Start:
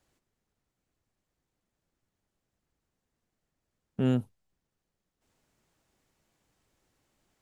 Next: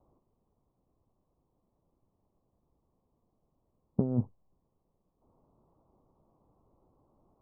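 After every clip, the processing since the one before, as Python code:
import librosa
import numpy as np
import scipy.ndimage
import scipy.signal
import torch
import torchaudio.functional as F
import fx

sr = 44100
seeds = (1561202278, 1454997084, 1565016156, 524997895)

y = scipy.signal.sosfilt(scipy.signal.ellip(4, 1.0, 40, 1100.0, 'lowpass', fs=sr, output='sos'), x)
y = fx.over_compress(y, sr, threshold_db=-30.0, ratio=-0.5)
y = y * 10.0 ** (3.5 / 20.0)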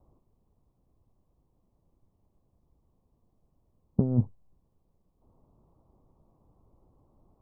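y = fx.low_shelf(x, sr, hz=150.0, db=10.0)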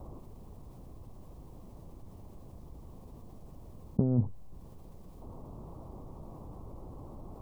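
y = fx.env_flatten(x, sr, amount_pct=50)
y = y * 10.0 ** (-4.0 / 20.0)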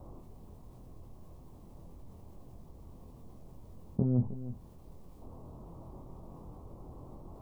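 y = fx.doubler(x, sr, ms=24.0, db=-4)
y = y + 10.0 ** (-13.5 / 20.0) * np.pad(y, (int(312 * sr / 1000.0), 0))[:len(y)]
y = y * 10.0 ** (-4.0 / 20.0)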